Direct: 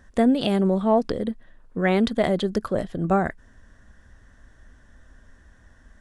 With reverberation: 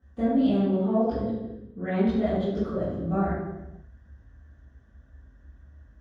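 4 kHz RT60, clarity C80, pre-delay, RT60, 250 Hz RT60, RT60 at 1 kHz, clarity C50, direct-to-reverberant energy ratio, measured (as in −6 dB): 0.80 s, 1.5 dB, 3 ms, 1.0 s, 1.2 s, 0.95 s, −1.5 dB, −17.0 dB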